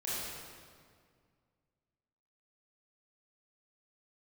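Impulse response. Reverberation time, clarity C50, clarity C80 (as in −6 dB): 2.0 s, −4.5 dB, −1.5 dB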